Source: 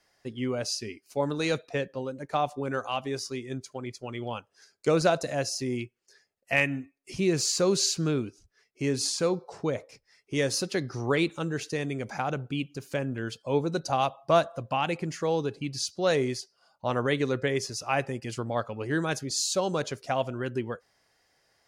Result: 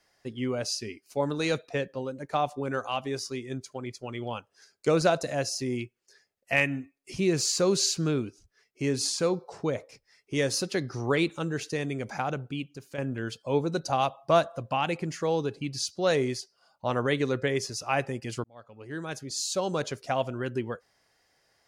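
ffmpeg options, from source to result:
-filter_complex "[0:a]asplit=3[a][b][c];[a]atrim=end=12.98,asetpts=PTS-STARTPTS,afade=t=out:st=12.21:d=0.77:silence=0.375837[d];[b]atrim=start=12.98:end=18.44,asetpts=PTS-STARTPTS,afade=t=in:d=0.004:c=hsin:silence=0.375837,afade=t=out:st=5.456:d=0.004:c=hsin[e];[c]atrim=start=18.44,asetpts=PTS-STARTPTS,afade=t=in:d=1.41[f];[d][e][f]concat=n=3:v=0:a=1"

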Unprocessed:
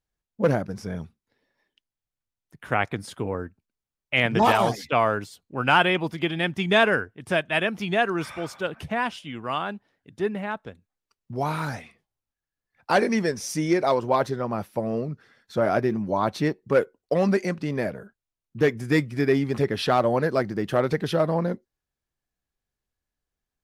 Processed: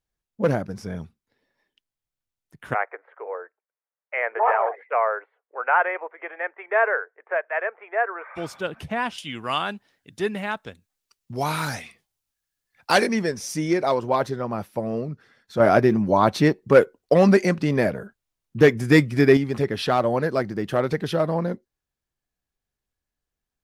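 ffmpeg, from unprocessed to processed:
-filter_complex "[0:a]asplit=3[a][b][c];[a]afade=t=out:st=2.73:d=0.02[d];[b]asuperpass=centerf=970:order=12:qfactor=0.58,afade=t=in:st=2.73:d=0.02,afade=t=out:st=8.35:d=0.02[e];[c]afade=t=in:st=8.35:d=0.02[f];[d][e][f]amix=inputs=3:normalize=0,asettb=1/sr,asplit=3[g][h][i];[g]atrim=end=9.184[j];[h]atrim=start=9.18:end=13.07,asetpts=PTS-STARTPTS,afade=t=in:d=0.004:c=qsin,afade=t=out:st=3.886:d=0.004:c=qsin,highshelf=f=2.2k:g=11.5[k];[i]atrim=start=13.066[l];[j][k]acrossfade=d=0.004:c1=hsin:c2=qsin[m];[m][l]acrossfade=d=0.004:c1=qsin:c2=hsin,asplit=3[n][o][p];[n]atrim=end=15.602[q];[o]atrim=start=15.598:end=19.372,asetpts=PTS-STARTPTS,volume=6dB[r];[p]atrim=start=19.368[s];[q][r]acrossfade=d=0.004:c1=hsin:c2=hsin[t];[t][s]acrossfade=d=0.004:c1=hsin:c2=hsin"

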